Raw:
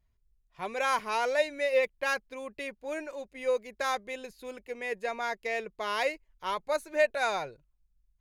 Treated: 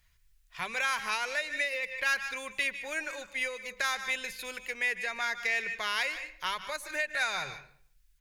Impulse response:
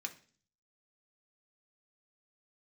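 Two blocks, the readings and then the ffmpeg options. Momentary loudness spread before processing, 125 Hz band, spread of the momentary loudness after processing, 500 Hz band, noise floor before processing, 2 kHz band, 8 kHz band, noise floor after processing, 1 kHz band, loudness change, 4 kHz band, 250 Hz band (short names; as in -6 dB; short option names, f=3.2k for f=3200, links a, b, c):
13 LU, n/a, 7 LU, -11.5 dB, -73 dBFS, +4.5 dB, +4.5 dB, -66 dBFS, -4.0 dB, 0.0 dB, +4.5 dB, -6.5 dB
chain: -filter_complex "[0:a]bandreject=f=50:t=h:w=6,bandreject=f=100:t=h:w=6,bandreject=f=150:t=h:w=6,bandreject=f=200:t=h:w=6,acrossover=split=310[a][b];[b]acompressor=threshold=-53dB:ratio=1.5[c];[a][c]amix=inputs=2:normalize=0,asplit=2[d][e];[e]adelay=113,lowpass=f=3.4k:p=1,volume=-22dB,asplit=2[f][g];[g]adelay=113,lowpass=f=3.4k:p=1,volume=0.43,asplit=2[h][i];[i]adelay=113,lowpass=f=3.4k:p=1,volume=0.43[j];[d][f][h][j]amix=inputs=4:normalize=0,asplit=2[k][l];[1:a]atrim=start_sample=2205,adelay=149[m];[l][m]afir=irnorm=-1:irlink=0,volume=-11.5dB[n];[k][n]amix=inputs=2:normalize=0,acompressor=threshold=-38dB:ratio=6,firequalizer=gain_entry='entry(140,0);entry(240,-9);entry(1600,12)':delay=0.05:min_phase=1,volume=5dB"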